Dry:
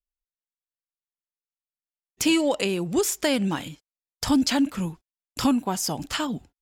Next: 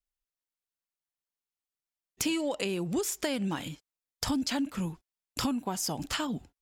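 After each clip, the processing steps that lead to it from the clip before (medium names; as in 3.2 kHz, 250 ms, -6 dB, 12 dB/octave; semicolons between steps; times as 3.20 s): compression 3:1, threshold -30 dBFS, peak gain reduction 10.5 dB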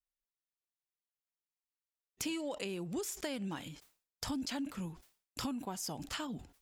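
decay stretcher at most 140 dB/s; trim -8 dB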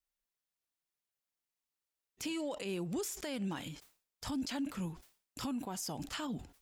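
peak limiter -32.5 dBFS, peak gain reduction 11 dB; trim +2.5 dB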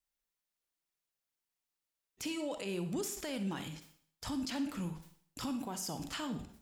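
reverberation RT60 0.55 s, pre-delay 39 ms, DRR 9 dB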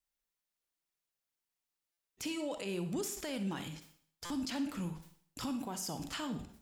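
buffer glitch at 1.92/4.25 s, samples 256, times 8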